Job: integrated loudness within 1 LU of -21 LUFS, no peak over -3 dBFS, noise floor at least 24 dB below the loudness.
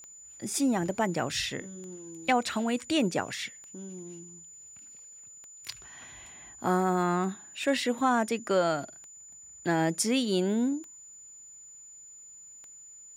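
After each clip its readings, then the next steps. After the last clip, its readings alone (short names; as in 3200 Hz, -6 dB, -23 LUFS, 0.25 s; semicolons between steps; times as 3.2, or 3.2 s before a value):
clicks 8; steady tone 7000 Hz; tone level -47 dBFS; loudness -29.0 LUFS; peak -14.5 dBFS; loudness target -21.0 LUFS
-> de-click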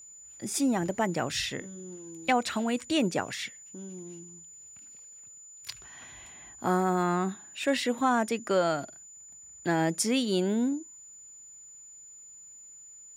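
clicks 0; steady tone 7000 Hz; tone level -47 dBFS
-> notch 7000 Hz, Q 30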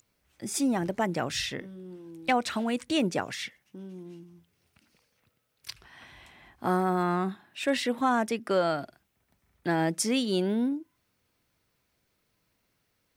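steady tone none; loudness -29.0 LUFS; peak -15.0 dBFS; loudness target -21.0 LUFS
-> gain +8 dB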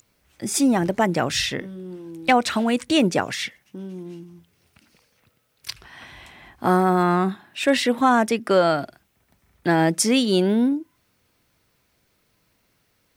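loudness -21.0 LUFS; peak -7.0 dBFS; noise floor -67 dBFS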